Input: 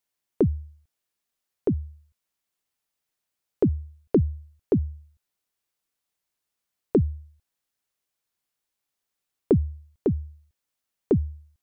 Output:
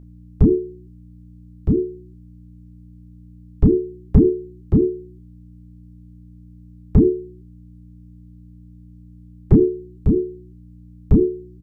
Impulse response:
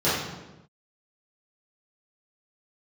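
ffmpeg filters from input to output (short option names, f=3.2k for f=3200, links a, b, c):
-filter_complex "[0:a]lowshelf=f=290:g=9,acrossover=split=200|280|490[a][b][c][d];[b]aeval=exprs='sgn(val(0))*max(abs(val(0))-0.00126,0)':c=same[e];[c]acontrast=88[f];[a][e][f][d]amix=inputs=4:normalize=0,aeval=exprs='0.794*(cos(1*acos(clip(val(0)/0.794,-1,1)))-cos(1*PI/2))+0.112*(cos(2*acos(clip(val(0)/0.794,-1,1)))-cos(2*PI/2))+0.0631*(cos(3*acos(clip(val(0)/0.794,-1,1)))-cos(3*PI/2))+0.0112*(cos(6*acos(clip(val(0)/0.794,-1,1)))-cos(6*PI/2))':c=same,afreqshift=-440,aeval=exprs='val(0)+0.00794*(sin(2*PI*60*n/s)+sin(2*PI*2*60*n/s)/2+sin(2*PI*3*60*n/s)/3+sin(2*PI*4*60*n/s)/4+sin(2*PI*5*60*n/s)/5)':c=same,asplit=2[g][h];[h]adelay=27,volume=-6dB[i];[g][i]amix=inputs=2:normalize=0,aecho=1:1:78:0.0794,volume=1dB"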